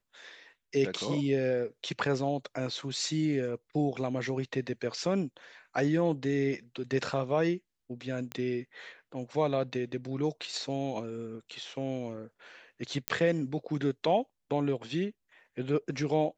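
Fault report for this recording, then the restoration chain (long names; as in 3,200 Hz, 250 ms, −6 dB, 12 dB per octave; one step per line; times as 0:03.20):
0:08.32: click −20 dBFS
0:13.08: click −10 dBFS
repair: click removal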